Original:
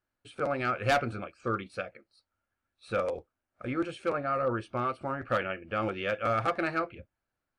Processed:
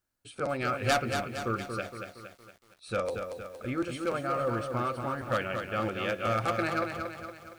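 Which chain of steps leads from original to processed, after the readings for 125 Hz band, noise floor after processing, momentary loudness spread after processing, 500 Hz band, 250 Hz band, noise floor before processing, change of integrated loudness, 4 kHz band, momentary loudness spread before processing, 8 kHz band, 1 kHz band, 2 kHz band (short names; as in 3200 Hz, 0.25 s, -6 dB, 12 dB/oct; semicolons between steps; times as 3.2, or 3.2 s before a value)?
+2.0 dB, -63 dBFS, 11 LU, 0.0 dB, +1.0 dB, under -85 dBFS, 0.0 dB, +3.5 dB, 11 LU, n/a, 0.0 dB, 0.0 dB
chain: tone controls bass +3 dB, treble +10 dB; lo-fi delay 0.232 s, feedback 55%, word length 9-bit, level -6 dB; gain -1.5 dB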